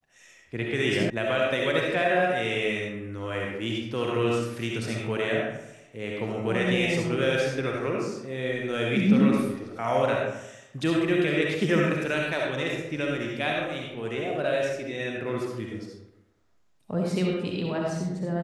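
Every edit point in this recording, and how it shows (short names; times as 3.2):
1.1 sound cut off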